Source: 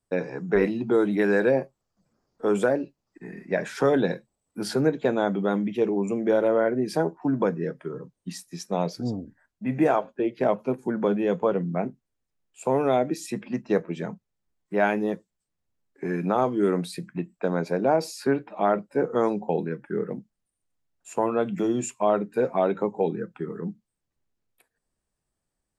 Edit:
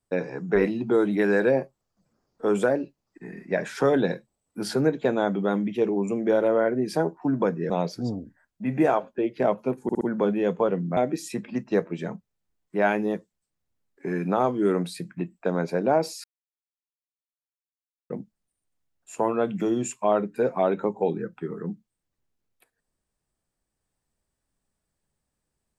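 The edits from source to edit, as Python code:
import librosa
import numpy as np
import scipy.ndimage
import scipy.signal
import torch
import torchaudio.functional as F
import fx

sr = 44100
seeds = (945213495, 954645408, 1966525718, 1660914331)

y = fx.edit(x, sr, fx.cut(start_s=7.7, length_s=1.01),
    fx.stutter(start_s=10.84, slice_s=0.06, count=4),
    fx.cut(start_s=11.8, length_s=1.15),
    fx.silence(start_s=18.22, length_s=1.86), tone=tone)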